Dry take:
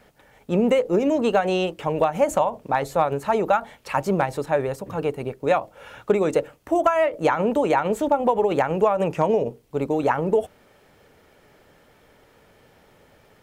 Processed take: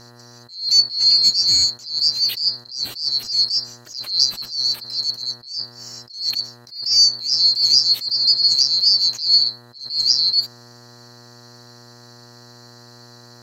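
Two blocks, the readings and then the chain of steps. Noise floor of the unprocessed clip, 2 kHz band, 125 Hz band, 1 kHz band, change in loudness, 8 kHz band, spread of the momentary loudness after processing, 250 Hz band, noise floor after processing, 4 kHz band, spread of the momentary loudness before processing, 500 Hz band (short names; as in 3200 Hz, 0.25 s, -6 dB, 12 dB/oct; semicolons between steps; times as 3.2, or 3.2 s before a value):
-57 dBFS, under -10 dB, under -10 dB, under -20 dB, +6.5 dB, +16.0 dB, 15 LU, under -20 dB, -45 dBFS, +28.0 dB, 7 LU, under -25 dB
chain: band-swap scrambler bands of 4000 Hz; buzz 120 Hz, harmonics 16, -53 dBFS -4 dB/oct; attack slew limiter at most 120 dB/s; gain +6.5 dB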